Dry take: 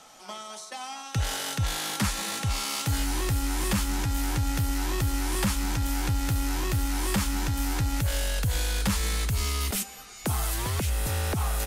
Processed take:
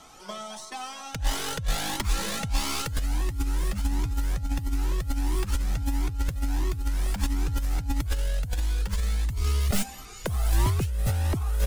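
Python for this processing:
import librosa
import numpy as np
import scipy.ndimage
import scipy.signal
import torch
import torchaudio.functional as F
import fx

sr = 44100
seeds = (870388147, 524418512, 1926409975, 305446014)

y = fx.tracing_dist(x, sr, depth_ms=0.038)
y = fx.low_shelf(y, sr, hz=490.0, db=8.5)
y = fx.over_compress(y, sr, threshold_db=-22.0, ratio=-0.5)
y = fx.comb_cascade(y, sr, direction='rising', hz=1.5)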